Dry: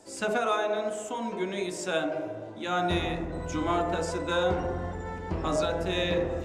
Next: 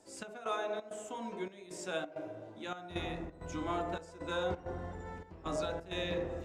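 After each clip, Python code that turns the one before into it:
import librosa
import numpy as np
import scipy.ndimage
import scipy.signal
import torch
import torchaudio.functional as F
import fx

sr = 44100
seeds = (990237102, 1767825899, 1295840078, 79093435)

y = fx.step_gate(x, sr, bpm=132, pattern='xx..xxx.xxx', floor_db=-12.0, edge_ms=4.5)
y = y * 10.0 ** (-8.5 / 20.0)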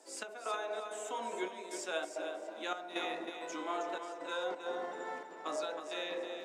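y = scipy.signal.sosfilt(scipy.signal.bessel(6, 440.0, 'highpass', norm='mag', fs=sr, output='sos'), x)
y = fx.rider(y, sr, range_db=5, speed_s=0.5)
y = fx.echo_feedback(y, sr, ms=317, feedback_pct=27, wet_db=-8)
y = y * 10.0 ** (1.5 / 20.0)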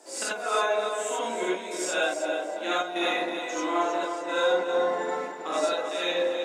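y = fx.rider(x, sr, range_db=10, speed_s=2.0)
y = fx.rev_gated(y, sr, seeds[0], gate_ms=110, shape='rising', drr_db=-7.0)
y = y * 10.0 ** (3.5 / 20.0)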